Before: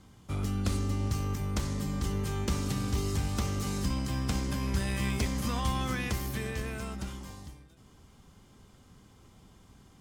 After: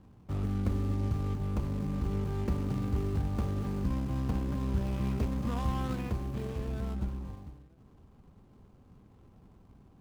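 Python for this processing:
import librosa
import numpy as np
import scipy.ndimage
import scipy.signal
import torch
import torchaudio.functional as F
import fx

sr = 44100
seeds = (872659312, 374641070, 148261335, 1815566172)

y = scipy.ndimage.median_filter(x, 25, mode='constant')
y = fx.low_shelf(y, sr, hz=140.0, db=7.0, at=(6.68, 7.35))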